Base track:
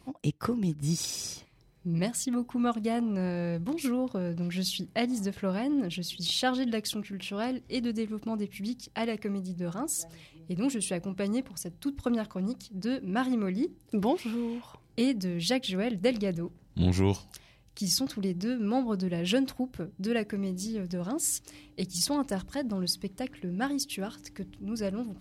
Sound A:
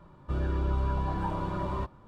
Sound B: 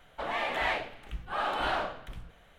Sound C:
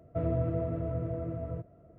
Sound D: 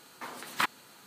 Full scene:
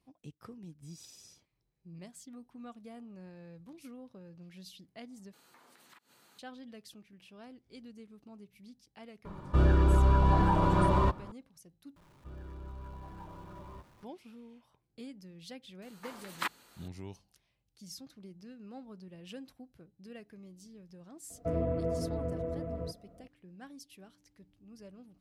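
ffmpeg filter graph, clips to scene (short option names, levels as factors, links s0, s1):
-filter_complex "[4:a]asplit=2[s0][s1];[1:a]asplit=2[s2][s3];[0:a]volume=0.106[s4];[s0]acompressor=threshold=0.00355:ratio=6:attack=3.2:release=140:knee=1:detection=peak[s5];[s2]alimiter=level_in=14.1:limit=0.891:release=50:level=0:latency=1[s6];[s3]aeval=exprs='val(0)+0.5*0.00944*sgn(val(0))':c=same[s7];[s1]highpass=180[s8];[3:a]aecho=1:1:4.1:0.66[s9];[s4]asplit=3[s10][s11][s12];[s10]atrim=end=5.334[s13];[s5]atrim=end=1.06,asetpts=PTS-STARTPTS,volume=0.355[s14];[s11]atrim=start=6.386:end=11.964[s15];[s7]atrim=end=2.07,asetpts=PTS-STARTPTS,volume=0.133[s16];[s12]atrim=start=14.026[s17];[s6]atrim=end=2.07,asetpts=PTS-STARTPTS,volume=0.178,afade=t=in:d=0.004:c=hsin,afade=t=out:st=2.066:d=0.004:c=hsin,adelay=9250[s18];[s8]atrim=end=1.06,asetpts=PTS-STARTPTS,volume=0.501,afade=t=in:d=0.004:c=hsin,afade=t=out:st=1.056:d=0.004:c=hsin,adelay=15820[s19];[s9]atrim=end=1.98,asetpts=PTS-STARTPTS,volume=0.891,afade=t=in:d=0.004:c=hsin,afade=t=out:st=1.976:d=0.004:c=hsin,adelay=21300[s20];[s13][s14]acrossfade=d=0.004:c1=hsin:c2=hsin[s21];[s21][s15]acrossfade=d=0.004:c1=hsin:c2=hsin[s22];[s22][s16]acrossfade=d=0.004:c1=hsin:c2=hsin[s23];[s23][s17]acrossfade=d=0.004:c1=hsin:c2=hsin[s24];[s24][s18][s19][s20]amix=inputs=4:normalize=0"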